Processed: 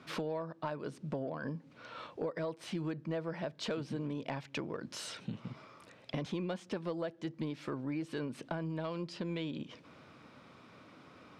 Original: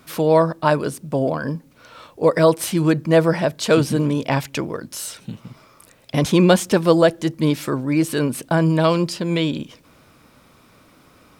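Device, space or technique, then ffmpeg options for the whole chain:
AM radio: -af "highpass=110,lowpass=4100,acompressor=threshold=0.0316:ratio=10,asoftclip=type=tanh:threshold=0.1,volume=0.631"

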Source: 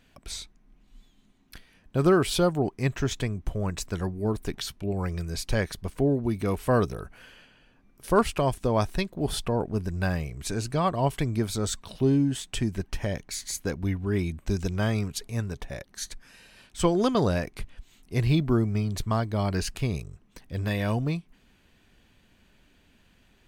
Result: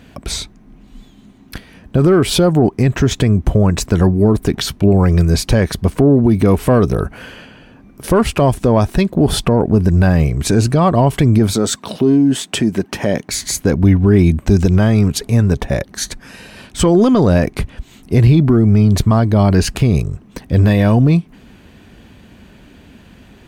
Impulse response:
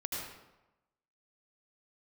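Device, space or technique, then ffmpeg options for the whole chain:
mastering chain: -filter_complex "[0:a]highpass=48,equalizer=f=230:t=o:w=0.77:g=2,acompressor=threshold=0.0398:ratio=1.5,asoftclip=type=tanh:threshold=0.158,tiltshelf=f=1200:g=4,alimiter=level_in=9.44:limit=0.891:release=50:level=0:latency=1,asettb=1/sr,asplit=3[s0][s1][s2];[s0]atrim=end=11.534[s3];[s1]atrim=start=11.53:end=13.29,asetpts=PTS-STARTPTS,afade=t=in:d=0.004:c=qsin,afade=t=out:st=1.756:d=0.004:c=qsin,highpass=200[s4];[s2]atrim=start=13.286[s5];[s3][s4]acrossfade=d=0.004:c1=hsin:c2=qsin[s6];[s6][s5]acrossfade=d=0.004:c1=qsin:c2=hsin,volume=0.75"

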